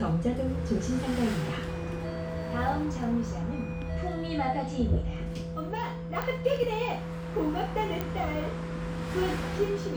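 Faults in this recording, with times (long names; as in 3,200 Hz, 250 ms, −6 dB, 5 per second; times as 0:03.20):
0:06.22: click −18 dBFS
0:08.01: click −17 dBFS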